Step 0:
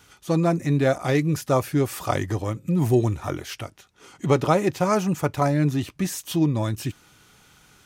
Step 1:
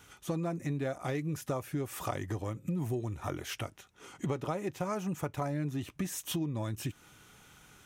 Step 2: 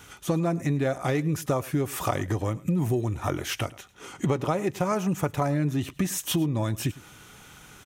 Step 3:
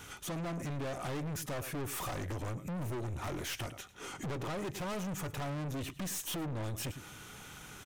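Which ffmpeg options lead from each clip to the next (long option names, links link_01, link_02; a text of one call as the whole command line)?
ffmpeg -i in.wav -af "equalizer=frequency=4600:width_type=o:width=0.41:gain=-6,acompressor=threshold=-29dB:ratio=6,volume=-2.5dB" out.wav
ffmpeg -i in.wav -af "aecho=1:1:106:0.0944,volume=8.5dB" out.wav
ffmpeg -i in.wav -af "aeval=exprs='(tanh(63.1*val(0)+0.2)-tanh(0.2))/63.1':channel_layout=same" out.wav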